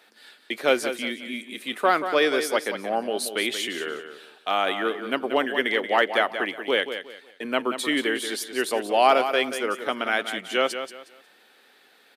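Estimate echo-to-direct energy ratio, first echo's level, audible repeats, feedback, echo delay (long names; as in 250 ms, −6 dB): −9.0 dB, −9.5 dB, 3, 28%, 181 ms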